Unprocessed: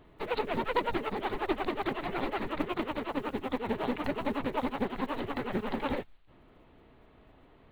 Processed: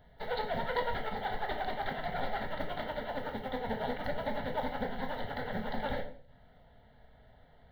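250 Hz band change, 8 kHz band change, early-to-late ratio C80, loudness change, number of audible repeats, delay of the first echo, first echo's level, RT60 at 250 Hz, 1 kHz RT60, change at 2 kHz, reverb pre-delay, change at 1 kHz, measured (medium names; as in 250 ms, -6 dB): -8.0 dB, no reading, 14.0 dB, -3.0 dB, no echo, no echo, no echo, 0.65 s, 0.50 s, -1.0 dB, 17 ms, -1.5 dB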